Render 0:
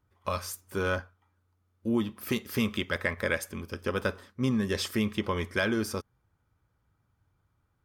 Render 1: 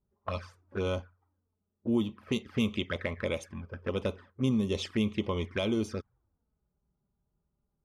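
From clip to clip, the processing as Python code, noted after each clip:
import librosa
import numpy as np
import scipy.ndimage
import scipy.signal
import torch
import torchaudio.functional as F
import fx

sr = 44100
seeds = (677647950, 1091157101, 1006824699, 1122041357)

y = fx.env_lowpass(x, sr, base_hz=580.0, full_db=-23.0)
y = fx.env_flanger(y, sr, rest_ms=5.1, full_db=-26.5)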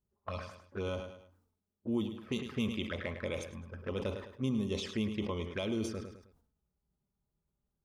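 y = fx.echo_feedback(x, sr, ms=105, feedback_pct=34, wet_db=-12.0)
y = fx.sustainer(y, sr, db_per_s=80.0)
y = y * 10.0 ** (-5.5 / 20.0)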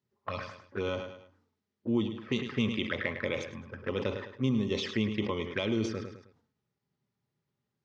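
y = fx.cabinet(x, sr, low_hz=110.0, low_slope=24, high_hz=5800.0, hz=(110.0, 180.0, 660.0, 1900.0), db=(5, -5, -4, 6))
y = y * 10.0 ** (5.0 / 20.0)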